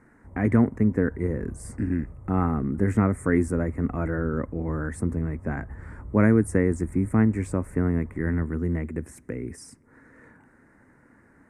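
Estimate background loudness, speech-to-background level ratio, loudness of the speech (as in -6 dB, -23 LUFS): -44.0 LUFS, 18.5 dB, -25.5 LUFS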